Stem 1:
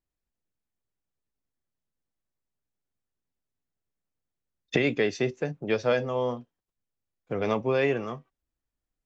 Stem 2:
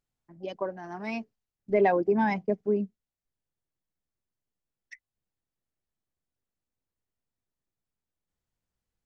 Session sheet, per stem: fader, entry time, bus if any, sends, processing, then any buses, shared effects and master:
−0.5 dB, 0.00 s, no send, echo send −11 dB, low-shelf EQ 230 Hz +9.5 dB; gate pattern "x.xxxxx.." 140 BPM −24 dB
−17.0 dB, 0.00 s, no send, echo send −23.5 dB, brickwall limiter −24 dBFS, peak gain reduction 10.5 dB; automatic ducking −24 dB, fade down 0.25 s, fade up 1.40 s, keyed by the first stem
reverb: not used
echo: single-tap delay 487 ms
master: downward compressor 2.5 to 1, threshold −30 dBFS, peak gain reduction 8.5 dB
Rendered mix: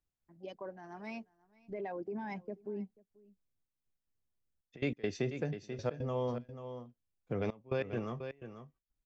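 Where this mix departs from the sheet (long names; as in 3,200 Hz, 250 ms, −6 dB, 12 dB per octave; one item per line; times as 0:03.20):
stem 1 −0.5 dB → −8.0 dB
stem 2 −17.0 dB → −9.0 dB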